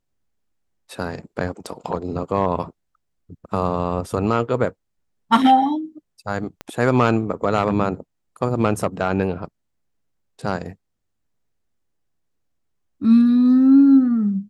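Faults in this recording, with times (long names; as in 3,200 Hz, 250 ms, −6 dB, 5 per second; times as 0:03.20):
0:06.61: click −17 dBFS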